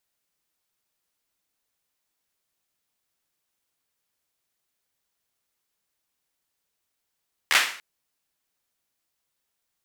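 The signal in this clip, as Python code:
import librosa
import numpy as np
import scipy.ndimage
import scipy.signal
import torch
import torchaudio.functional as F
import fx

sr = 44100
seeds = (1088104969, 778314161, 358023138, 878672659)

y = fx.drum_clap(sr, seeds[0], length_s=0.29, bursts=4, spacing_ms=13, hz=2000.0, decay_s=0.47)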